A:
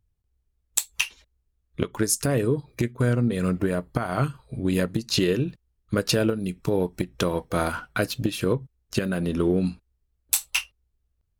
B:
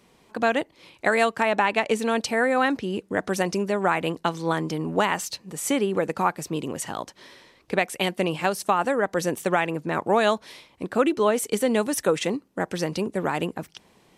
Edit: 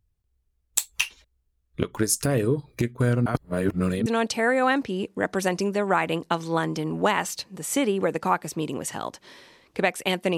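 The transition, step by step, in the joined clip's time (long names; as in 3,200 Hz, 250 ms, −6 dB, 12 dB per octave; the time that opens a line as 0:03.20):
A
0:03.26–0:04.06: reverse
0:04.06: continue with B from 0:02.00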